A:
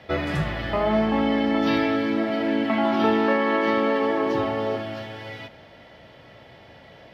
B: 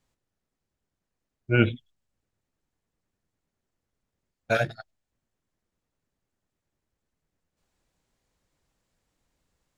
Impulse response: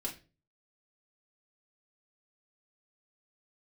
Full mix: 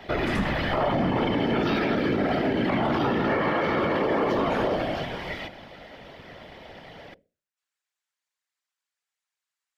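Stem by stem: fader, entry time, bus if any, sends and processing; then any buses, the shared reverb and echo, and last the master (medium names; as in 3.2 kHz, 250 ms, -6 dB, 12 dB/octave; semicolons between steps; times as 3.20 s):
+3.0 dB, 0.00 s, send -23.5 dB, none
-8.0 dB, 0.00 s, send -10.5 dB, Chebyshev high-pass 1.5 kHz, order 2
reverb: on, pre-delay 4 ms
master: hum notches 60/120/180/240/300/360/420/480/540 Hz; whisper effect; peak limiter -16 dBFS, peak gain reduction 10 dB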